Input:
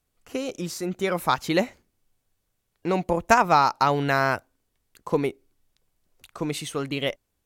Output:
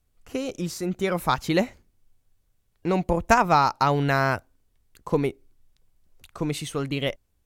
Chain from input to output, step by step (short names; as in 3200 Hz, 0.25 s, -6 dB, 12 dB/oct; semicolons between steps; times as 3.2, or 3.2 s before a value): low shelf 120 Hz +12 dB; gain -1 dB